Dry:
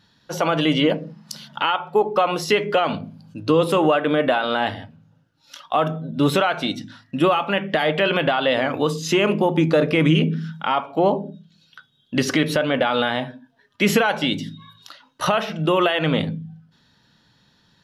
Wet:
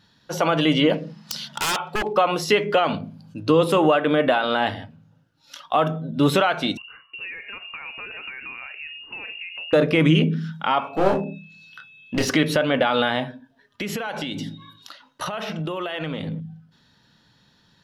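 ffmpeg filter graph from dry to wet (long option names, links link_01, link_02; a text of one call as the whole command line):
ffmpeg -i in.wav -filter_complex "[0:a]asettb=1/sr,asplit=3[link_01][link_02][link_03];[link_01]atrim=end=0.934[link_04];[link_02]atrim=start=0.93:end=2.13,asetpts=PTS-STARTPTS,afade=type=in:duration=0.004:curve=qsin,afade=type=out:start_time=1.196:duration=0.004:curve=qsin,equalizer=frequency=4800:width=0.43:gain=8.5,aeval=exprs='0.133*(abs(mod(val(0)/0.133+3,4)-2)-1)':channel_layout=same[link_05];[link_03]atrim=start=2.126[link_06];[link_04][link_05]acrossfade=duration=0.004:curve1=hsin:curve2=qsin[link_07];[link_07][link_06]acrossfade=duration=0.004:curve1=qsin:curve2=hsin,asettb=1/sr,asplit=3[link_08][link_09][link_10];[link_08]atrim=end=6.774[link_11];[link_09]atrim=start=6.77:end=9.73,asetpts=PTS-STARTPTS,afade=type=in:duration=0.004:curve=qsin,afade=type=out:start_time=2.956:duration=0.004:curve=qsin,acompressor=threshold=-38dB:ratio=3:attack=3.2:release=140:knee=1:detection=peak,lowpass=frequency=2600:width_type=q:width=0.5098,lowpass=frequency=2600:width_type=q:width=0.6013,lowpass=frequency=2600:width_type=q:width=0.9,lowpass=frequency=2600:width_type=q:width=2.563,afreqshift=-3000[link_12];[link_10]atrim=start=9.726[link_13];[link_11][link_12]acrossfade=duration=0.004:curve1=hsin:curve2=qsin[link_14];[link_14][link_13]acrossfade=duration=0.004:curve1=qsin:curve2=hsin,asettb=1/sr,asplit=3[link_15][link_16][link_17];[link_15]atrim=end=10.794[link_18];[link_16]atrim=start=10.79:end=12.3,asetpts=PTS-STARTPTS,afade=type=in:duration=0.004:curve=qsin,afade=type=out:start_time=1.506:duration=0.004:curve=qsin,aeval=exprs='clip(val(0),-1,0.0841)':channel_layout=same,aeval=exprs='val(0)+0.01*sin(2*PI*2600*n/s)':channel_layout=same,asplit=2[link_19][link_20];[link_20]adelay=26,volume=-4dB[link_21];[link_19][link_21]amix=inputs=2:normalize=0,atrim=end_sample=66591[link_22];[link_17]atrim=start=12.296[link_23];[link_18][link_22]acrossfade=duration=0.004:curve1=hsin:curve2=qsin[link_24];[link_24][link_23]acrossfade=duration=0.004:curve1=qsin:curve2=hsin,asettb=1/sr,asplit=3[link_25][link_26][link_27];[link_25]atrim=end=13.294[link_28];[link_26]atrim=start=13.29:end=16.4,asetpts=PTS-STARTPTS,afade=type=in:duration=0.004:curve=qsin,afade=type=out:start_time=3.106:duration=0.004:curve=qsin,asplit=2[link_29][link_30];[link_30]adelay=108,lowpass=frequency=1200:poles=1,volume=-21.5dB,asplit=2[link_31][link_32];[link_32]adelay=108,lowpass=frequency=1200:poles=1,volume=0.52,asplit=2[link_33][link_34];[link_34]adelay=108,lowpass=frequency=1200:poles=1,volume=0.52,asplit=2[link_35][link_36];[link_36]adelay=108,lowpass=frequency=1200:poles=1,volume=0.52[link_37];[link_29][link_31][link_33][link_35][link_37]amix=inputs=5:normalize=0,atrim=end_sample=137151,acompressor=threshold=-24dB:ratio=12:attack=3.2:release=140:knee=1:detection=peak[link_38];[link_27]atrim=start=16.396[link_39];[link_28][link_38]acrossfade=duration=0.004:curve1=hsin:curve2=qsin[link_40];[link_40][link_39]acrossfade=duration=0.004:curve1=qsin:curve2=hsin" out.wav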